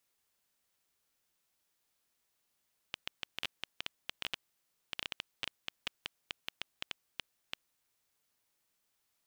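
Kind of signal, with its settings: random clicks 7.3/s -18 dBFS 4.94 s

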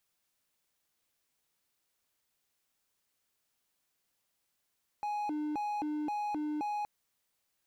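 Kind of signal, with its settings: siren hi-lo 301–833 Hz 1.9/s triangle -30 dBFS 1.82 s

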